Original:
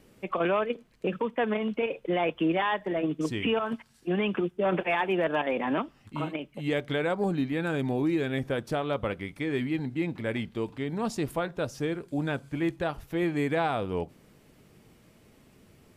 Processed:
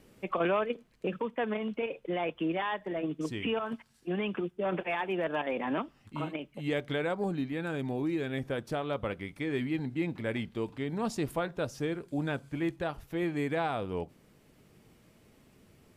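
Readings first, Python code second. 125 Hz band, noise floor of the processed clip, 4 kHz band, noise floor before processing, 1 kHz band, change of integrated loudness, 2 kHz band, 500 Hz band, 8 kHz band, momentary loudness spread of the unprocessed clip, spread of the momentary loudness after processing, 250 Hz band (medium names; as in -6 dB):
-3.5 dB, -64 dBFS, -4.0 dB, -60 dBFS, -4.0 dB, -4.0 dB, -4.0 dB, -4.0 dB, -3.0 dB, 7 LU, 6 LU, -4.0 dB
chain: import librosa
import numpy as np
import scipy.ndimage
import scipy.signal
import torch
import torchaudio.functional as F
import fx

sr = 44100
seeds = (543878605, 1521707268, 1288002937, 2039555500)

y = fx.rider(x, sr, range_db=10, speed_s=2.0)
y = F.gain(torch.from_numpy(y), -4.5).numpy()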